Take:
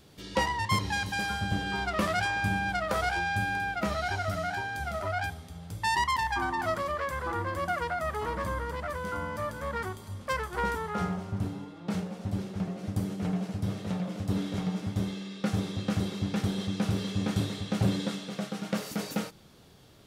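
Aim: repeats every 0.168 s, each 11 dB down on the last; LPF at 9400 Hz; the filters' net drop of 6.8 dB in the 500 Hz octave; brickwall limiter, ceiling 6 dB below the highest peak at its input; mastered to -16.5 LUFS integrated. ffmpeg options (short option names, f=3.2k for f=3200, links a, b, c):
-af "lowpass=9.4k,equalizer=f=500:t=o:g=-9,alimiter=limit=-22.5dB:level=0:latency=1,aecho=1:1:168|336|504:0.282|0.0789|0.0221,volume=17.5dB"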